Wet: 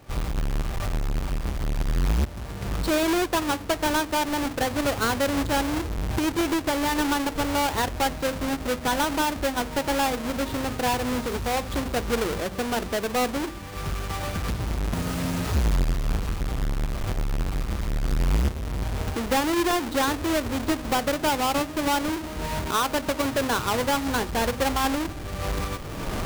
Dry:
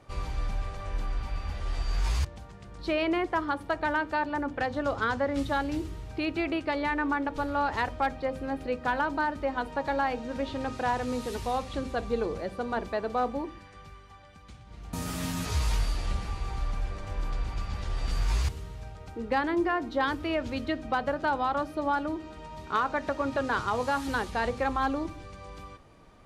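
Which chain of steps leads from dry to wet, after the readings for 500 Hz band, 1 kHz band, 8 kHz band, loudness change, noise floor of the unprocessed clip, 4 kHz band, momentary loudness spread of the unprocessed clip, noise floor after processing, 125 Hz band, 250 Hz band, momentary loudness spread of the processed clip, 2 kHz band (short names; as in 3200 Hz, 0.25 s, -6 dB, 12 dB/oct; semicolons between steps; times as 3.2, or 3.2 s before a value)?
+4.0 dB, +3.0 dB, +14.0 dB, +4.5 dB, -49 dBFS, +10.5 dB, 10 LU, -35 dBFS, +7.0 dB, +6.0 dB, 6 LU, +3.0 dB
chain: half-waves squared off; recorder AGC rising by 28 dB/s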